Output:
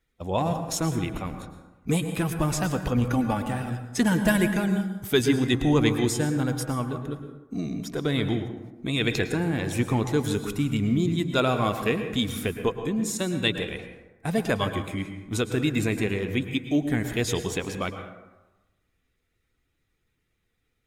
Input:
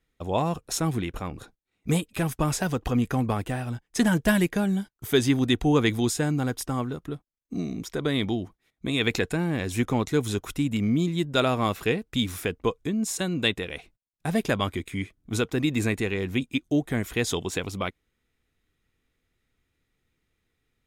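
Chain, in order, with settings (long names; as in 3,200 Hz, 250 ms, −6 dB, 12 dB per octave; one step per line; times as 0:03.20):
spectral magnitudes quantised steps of 15 dB
0:03.05–0:03.45: comb filter 3.5 ms
dense smooth reverb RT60 1.1 s, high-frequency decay 0.45×, pre-delay 95 ms, DRR 7.5 dB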